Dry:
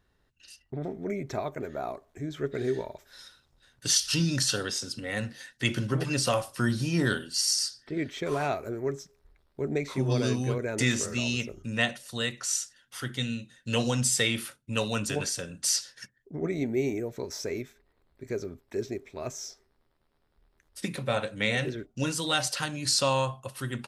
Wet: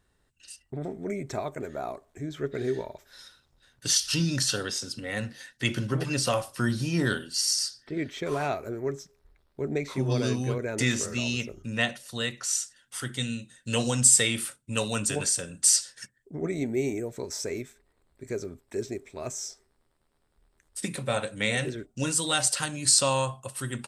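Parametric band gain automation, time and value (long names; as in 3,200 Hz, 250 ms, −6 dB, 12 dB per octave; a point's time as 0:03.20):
parametric band 8,300 Hz 0.44 octaves
0:01.68 +12.5 dB
0:02.48 +1 dB
0:12.43 +1 dB
0:12.98 +12.5 dB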